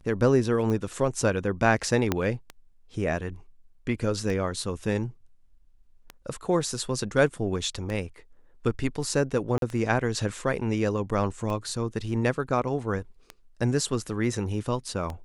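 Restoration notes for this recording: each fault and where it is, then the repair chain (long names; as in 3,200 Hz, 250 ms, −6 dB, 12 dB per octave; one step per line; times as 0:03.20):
scratch tick 33 1/3 rpm −20 dBFS
0:02.12: click −9 dBFS
0:09.58–0:09.62: drop-out 42 ms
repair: click removal
repair the gap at 0:09.58, 42 ms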